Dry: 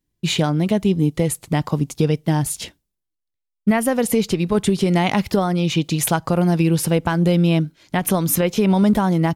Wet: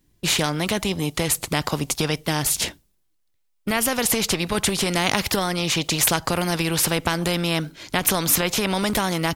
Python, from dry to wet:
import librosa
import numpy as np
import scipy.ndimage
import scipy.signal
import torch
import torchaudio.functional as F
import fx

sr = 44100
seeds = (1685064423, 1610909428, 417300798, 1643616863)

y = fx.spectral_comp(x, sr, ratio=2.0)
y = y * librosa.db_to_amplitude(3.0)